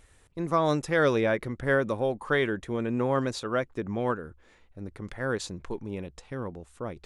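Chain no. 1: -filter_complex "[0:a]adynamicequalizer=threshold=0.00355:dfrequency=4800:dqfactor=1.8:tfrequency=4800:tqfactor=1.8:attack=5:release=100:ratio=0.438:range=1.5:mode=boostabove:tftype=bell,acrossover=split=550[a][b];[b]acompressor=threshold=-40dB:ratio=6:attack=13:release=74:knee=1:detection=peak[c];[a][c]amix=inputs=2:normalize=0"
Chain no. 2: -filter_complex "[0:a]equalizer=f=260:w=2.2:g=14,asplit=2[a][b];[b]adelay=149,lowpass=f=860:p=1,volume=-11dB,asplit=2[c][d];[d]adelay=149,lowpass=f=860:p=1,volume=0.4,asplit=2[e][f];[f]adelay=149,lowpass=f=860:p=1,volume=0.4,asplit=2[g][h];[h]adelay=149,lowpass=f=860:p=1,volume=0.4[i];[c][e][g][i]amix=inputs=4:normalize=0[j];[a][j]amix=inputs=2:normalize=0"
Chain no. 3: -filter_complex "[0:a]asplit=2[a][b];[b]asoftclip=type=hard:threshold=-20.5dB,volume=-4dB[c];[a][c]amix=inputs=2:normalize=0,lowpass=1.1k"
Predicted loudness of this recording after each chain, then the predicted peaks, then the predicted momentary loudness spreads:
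-31.5, -23.5, -26.0 LUFS; -16.5, -7.0, -11.5 dBFS; 12, 15, 13 LU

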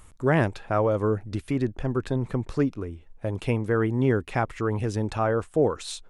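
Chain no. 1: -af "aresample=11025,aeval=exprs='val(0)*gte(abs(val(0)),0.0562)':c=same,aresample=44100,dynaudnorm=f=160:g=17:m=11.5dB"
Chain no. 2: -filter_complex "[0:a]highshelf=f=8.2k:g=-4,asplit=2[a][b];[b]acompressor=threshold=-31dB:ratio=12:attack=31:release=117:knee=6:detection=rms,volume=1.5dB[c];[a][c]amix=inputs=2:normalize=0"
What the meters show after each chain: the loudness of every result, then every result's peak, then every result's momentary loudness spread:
-20.5, -23.5 LUFS; -2.0, -7.0 dBFS; 10, 6 LU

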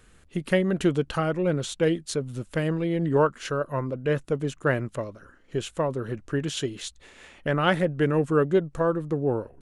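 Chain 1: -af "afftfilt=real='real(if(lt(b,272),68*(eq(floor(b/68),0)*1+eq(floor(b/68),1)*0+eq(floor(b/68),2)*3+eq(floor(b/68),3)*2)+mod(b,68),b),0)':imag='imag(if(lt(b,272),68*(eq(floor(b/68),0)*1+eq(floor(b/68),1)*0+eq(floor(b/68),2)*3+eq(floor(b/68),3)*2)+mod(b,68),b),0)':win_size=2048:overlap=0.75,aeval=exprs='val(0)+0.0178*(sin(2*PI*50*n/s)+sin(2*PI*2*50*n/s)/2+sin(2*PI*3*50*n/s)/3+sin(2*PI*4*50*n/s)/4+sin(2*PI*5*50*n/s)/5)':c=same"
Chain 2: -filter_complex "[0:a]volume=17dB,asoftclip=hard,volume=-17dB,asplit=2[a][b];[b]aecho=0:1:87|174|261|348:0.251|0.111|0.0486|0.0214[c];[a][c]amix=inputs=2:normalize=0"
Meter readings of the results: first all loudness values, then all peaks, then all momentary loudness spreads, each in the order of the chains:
-23.5, -27.0 LUFS; -6.0, -14.5 dBFS; 11, 10 LU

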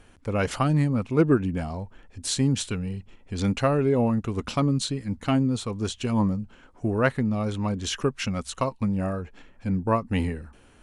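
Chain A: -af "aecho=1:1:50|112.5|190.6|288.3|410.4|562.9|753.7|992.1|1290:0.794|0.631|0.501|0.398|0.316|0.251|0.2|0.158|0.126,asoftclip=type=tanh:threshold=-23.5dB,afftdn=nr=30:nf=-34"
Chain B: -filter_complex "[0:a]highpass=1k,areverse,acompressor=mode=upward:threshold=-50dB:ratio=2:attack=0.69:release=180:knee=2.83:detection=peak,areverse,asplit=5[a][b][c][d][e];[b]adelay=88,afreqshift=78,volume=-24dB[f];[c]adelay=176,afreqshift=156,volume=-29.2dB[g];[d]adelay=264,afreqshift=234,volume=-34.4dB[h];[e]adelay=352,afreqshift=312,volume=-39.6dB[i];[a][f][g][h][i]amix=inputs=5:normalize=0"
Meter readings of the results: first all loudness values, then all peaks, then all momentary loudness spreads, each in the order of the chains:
-28.5, -34.5 LUFS; -21.5, -11.0 dBFS; 4, 14 LU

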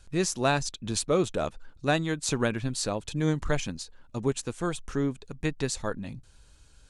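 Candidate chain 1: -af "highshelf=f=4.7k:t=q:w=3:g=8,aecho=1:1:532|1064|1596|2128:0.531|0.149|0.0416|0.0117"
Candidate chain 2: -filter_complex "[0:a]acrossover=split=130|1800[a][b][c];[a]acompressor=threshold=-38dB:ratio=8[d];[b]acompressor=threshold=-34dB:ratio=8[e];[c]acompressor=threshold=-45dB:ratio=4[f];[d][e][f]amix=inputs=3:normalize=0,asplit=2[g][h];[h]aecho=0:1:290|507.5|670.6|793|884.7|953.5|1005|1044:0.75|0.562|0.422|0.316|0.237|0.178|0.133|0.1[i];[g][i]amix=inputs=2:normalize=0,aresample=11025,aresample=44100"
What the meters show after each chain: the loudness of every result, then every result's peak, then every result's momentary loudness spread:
-24.5, -35.0 LUFS; -2.5, -17.5 dBFS; 10, 3 LU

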